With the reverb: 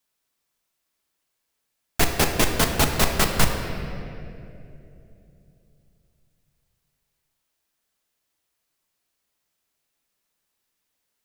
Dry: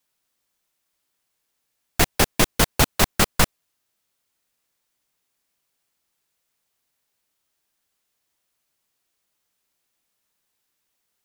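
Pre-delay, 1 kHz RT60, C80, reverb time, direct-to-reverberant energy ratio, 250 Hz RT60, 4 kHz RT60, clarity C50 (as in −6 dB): 3 ms, 2.3 s, 6.0 dB, 2.9 s, 3.0 dB, 3.6 s, 1.7 s, 5.0 dB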